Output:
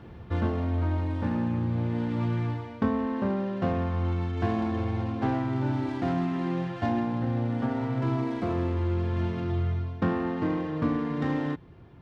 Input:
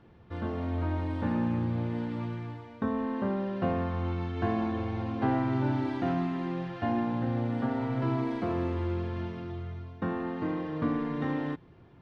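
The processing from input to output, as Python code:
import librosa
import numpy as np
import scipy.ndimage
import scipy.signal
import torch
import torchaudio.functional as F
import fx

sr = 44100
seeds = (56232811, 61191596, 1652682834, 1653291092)

y = fx.tracing_dist(x, sr, depth_ms=0.085)
y = scipy.signal.sosfilt(scipy.signal.butter(2, 46.0, 'highpass', fs=sr, output='sos'), y)
y = fx.low_shelf(y, sr, hz=67.0, db=11.5)
y = fx.rider(y, sr, range_db=10, speed_s=0.5)
y = y * librosa.db_to_amplitude(1.5)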